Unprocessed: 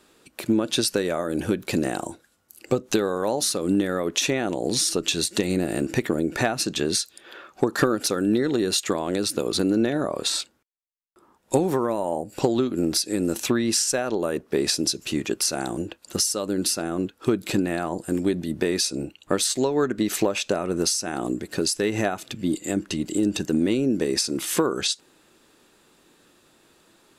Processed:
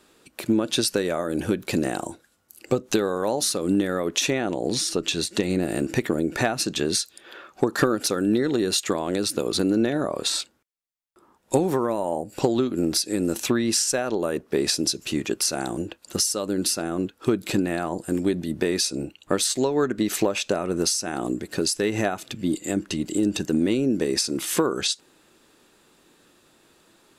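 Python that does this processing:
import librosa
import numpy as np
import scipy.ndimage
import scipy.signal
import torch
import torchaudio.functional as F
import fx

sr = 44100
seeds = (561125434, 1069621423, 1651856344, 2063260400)

y = fx.high_shelf(x, sr, hz=7200.0, db=-7.5, at=(4.38, 5.63))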